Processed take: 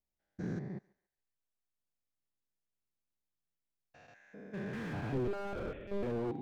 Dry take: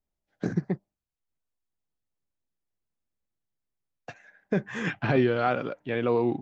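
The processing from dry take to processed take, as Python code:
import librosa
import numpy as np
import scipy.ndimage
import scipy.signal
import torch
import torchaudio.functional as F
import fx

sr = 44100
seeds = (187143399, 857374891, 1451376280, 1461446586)

y = fx.spec_steps(x, sr, hold_ms=200)
y = fx.echo_thinned(y, sr, ms=141, feedback_pct=37, hz=720.0, wet_db=-20.5)
y = fx.lpc_monotone(y, sr, seeds[0], pitch_hz=200.0, order=16, at=(5.27, 6.03))
y = fx.slew_limit(y, sr, full_power_hz=15.0)
y = y * librosa.db_to_amplitude(-5.0)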